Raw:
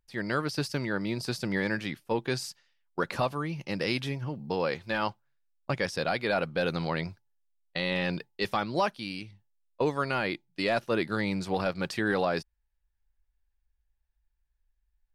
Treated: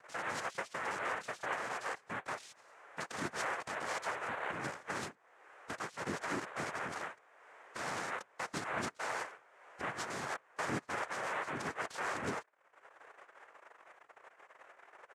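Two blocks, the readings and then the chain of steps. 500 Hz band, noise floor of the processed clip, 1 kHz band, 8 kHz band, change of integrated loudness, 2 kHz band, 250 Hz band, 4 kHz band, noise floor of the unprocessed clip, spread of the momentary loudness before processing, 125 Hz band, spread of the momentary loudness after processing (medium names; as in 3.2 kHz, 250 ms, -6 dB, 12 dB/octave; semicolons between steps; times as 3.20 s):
-13.0 dB, -67 dBFS, -5.0 dB, -0.5 dB, -9.0 dB, -5.5 dB, -14.5 dB, -11.5 dB, -77 dBFS, 7 LU, -16.0 dB, 20 LU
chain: every band turned upside down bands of 1 kHz; low-pass 2.3 kHz 12 dB/octave; compression 10:1, threshold -37 dBFS, peak gain reduction 15 dB; peak limiter -32.5 dBFS, peak gain reduction 10 dB; upward compressor, threshold -53 dBFS; comb 2.7 ms, depth 44%; noise-vocoded speech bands 3; trim +3.5 dB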